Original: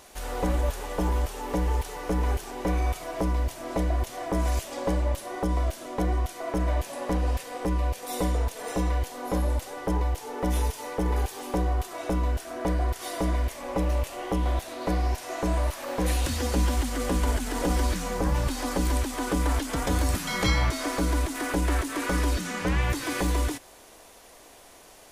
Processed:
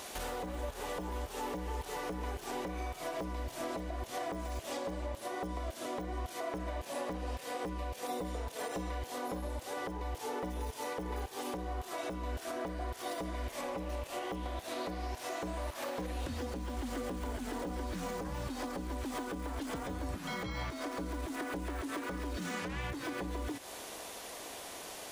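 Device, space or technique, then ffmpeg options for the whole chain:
broadcast voice chain: -af "highpass=frequency=120:poles=1,deesser=1,acompressor=threshold=-39dB:ratio=4,equalizer=frequency=3500:width_type=o:width=0.77:gain=2.5,alimiter=level_in=10dB:limit=-24dB:level=0:latency=1:release=309,volume=-10dB,volume=5.5dB"

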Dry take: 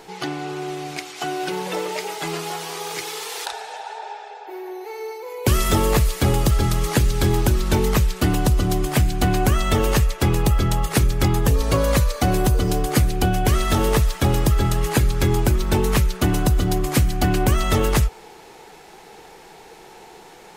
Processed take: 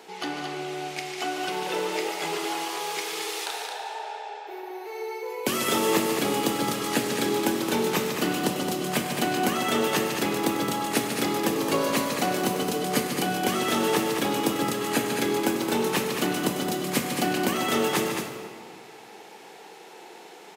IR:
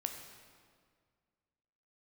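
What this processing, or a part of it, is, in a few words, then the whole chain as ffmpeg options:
stadium PA: -filter_complex "[0:a]highpass=frequency=200:width=0.5412,highpass=frequency=200:width=1.3066,equalizer=frequency=2800:width_type=o:width=0.73:gain=3,aecho=1:1:148.7|218.7:0.355|0.501[link_01];[1:a]atrim=start_sample=2205[link_02];[link_01][link_02]afir=irnorm=-1:irlink=0,volume=-3.5dB"

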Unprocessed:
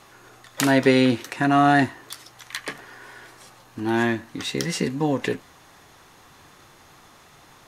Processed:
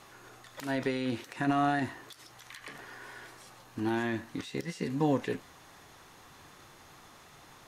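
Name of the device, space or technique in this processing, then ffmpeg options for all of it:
de-esser from a sidechain: -filter_complex "[0:a]asplit=2[link_01][link_02];[link_02]highpass=5600,apad=whole_len=338586[link_03];[link_01][link_03]sidechaincompress=threshold=-49dB:ratio=3:attack=1.8:release=55,volume=-3.5dB"

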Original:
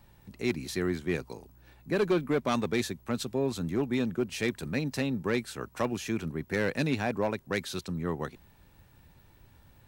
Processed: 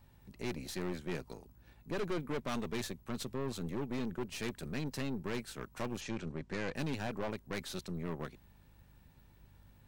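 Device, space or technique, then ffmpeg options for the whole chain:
valve amplifier with mains hum: -filter_complex "[0:a]aeval=exprs='(tanh(35.5*val(0)+0.7)-tanh(0.7))/35.5':channel_layout=same,aeval=exprs='val(0)+0.001*(sin(2*PI*50*n/s)+sin(2*PI*2*50*n/s)/2+sin(2*PI*3*50*n/s)/3+sin(2*PI*4*50*n/s)/4+sin(2*PI*5*50*n/s)/5)':channel_layout=same,asplit=3[link_01][link_02][link_03];[link_01]afade=type=out:start_time=6:duration=0.02[link_04];[link_02]lowpass=frequency=7800:width=0.5412,lowpass=frequency=7800:width=1.3066,afade=type=in:start_time=6:duration=0.02,afade=type=out:start_time=6.74:duration=0.02[link_05];[link_03]afade=type=in:start_time=6.74:duration=0.02[link_06];[link_04][link_05][link_06]amix=inputs=3:normalize=0,volume=-2dB"

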